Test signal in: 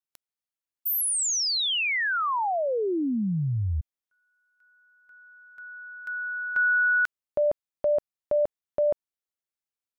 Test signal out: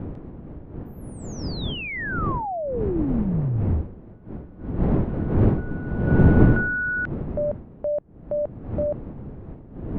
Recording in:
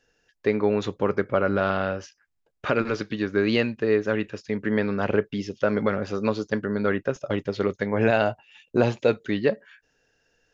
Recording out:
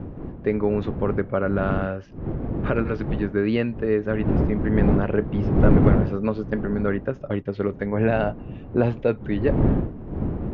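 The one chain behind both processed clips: wind noise 300 Hz -27 dBFS; low-pass 2.5 kHz 12 dB/octave; bass shelf 320 Hz +7 dB; trim -3 dB

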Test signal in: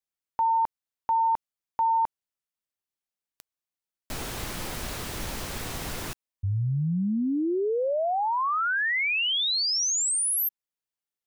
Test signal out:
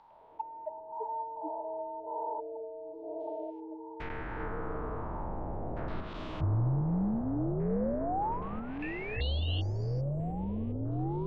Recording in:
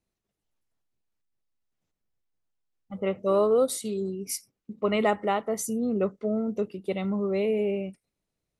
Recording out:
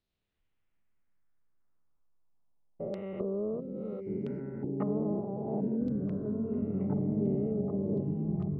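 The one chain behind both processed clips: spectrogram pixelated in time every 400 ms; low-pass that closes with the level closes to 350 Hz, closed at -28 dBFS; bass shelf 78 Hz +6 dB; LFO low-pass saw down 0.34 Hz 610–4200 Hz; repeats whose band climbs or falls 719 ms, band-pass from 200 Hz, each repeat 0.7 oct, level -2.5 dB; ever faster or slower copies 106 ms, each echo -6 st, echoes 3; trim -3 dB

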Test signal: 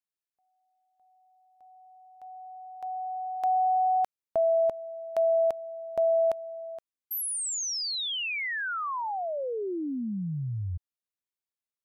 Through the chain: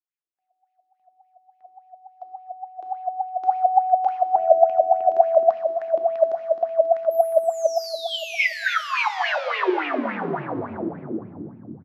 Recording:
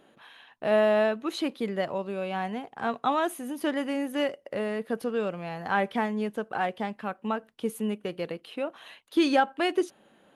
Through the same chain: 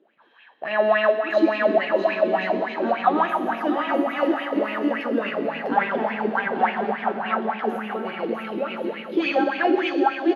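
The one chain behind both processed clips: coarse spectral quantiser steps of 15 dB; high-pass 180 Hz 12 dB/octave; dynamic bell 480 Hz, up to -6 dB, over -43 dBFS, Q 2.6; level rider gain up to 9 dB; short-mantissa float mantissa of 8-bit; boxcar filter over 5 samples; bouncing-ball echo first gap 650 ms, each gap 0.65×, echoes 5; plate-style reverb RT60 2.3 s, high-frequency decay 0.85×, DRR 0.5 dB; sweeping bell 3.5 Hz 310–2600 Hz +18 dB; trim -12.5 dB

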